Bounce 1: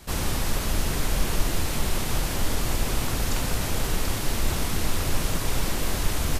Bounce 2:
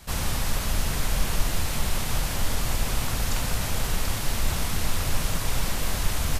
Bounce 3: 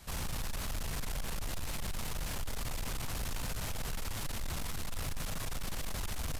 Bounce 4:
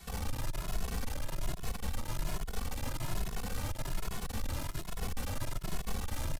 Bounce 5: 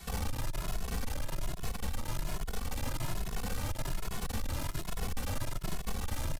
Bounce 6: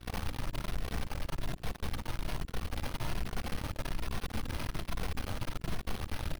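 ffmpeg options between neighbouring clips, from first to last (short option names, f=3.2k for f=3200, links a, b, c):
-af "equalizer=f=340:t=o:w=0.95:g=-7"
-af "alimiter=limit=-16.5dB:level=0:latency=1:release=48,asoftclip=type=tanh:threshold=-25.5dB,volume=-6dB"
-filter_complex "[0:a]acrossover=split=1200[a][b];[b]alimiter=level_in=15.5dB:limit=-24dB:level=0:latency=1:release=13,volume=-15.5dB[c];[a][c]amix=inputs=2:normalize=0,aeval=exprs='(tanh(50.1*val(0)+0.75)-tanh(0.75))/50.1':c=same,asplit=2[d][e];[e]adelay=2.3,afreqshift=1.2[f];[d][f]amix=inputs=2:normalize=1,volume=9dB"
-af "acompressor=threshold=-32dB:ratio=6,volume=3.5dB"
-af "aeval=exprs='val(0)+0.00794*(sin(2*PI*60*n/s)+sin(2*PI*2*60*n/s)/2+sin(2*PI*3*60*n/s)/3+sin(2*PI*4*60*n/s)/4+sin(2*PI*5*60*n/s)/5)':c=same,acrusher=samples=6:mix=1:aa=0.000001,aeval=exprs='0.0944*(cos(1*acos(clip(val(0)/0.0944,-1,1)))-cos(1*PI/2))+0.0119*(cos(5*acos(clip(val(0)/0.0944,-1,1)))-cos(5*PI/2))+0.0168*(cos(7*acos(clip(val(0)/0.0944,-1,1)))-cos(7*PI/2))+0.0119*(cos(8*acos(clip(val(0)/0.0944,-1,1)))-cos(8*PI/2))':c=same,volume=-4dB"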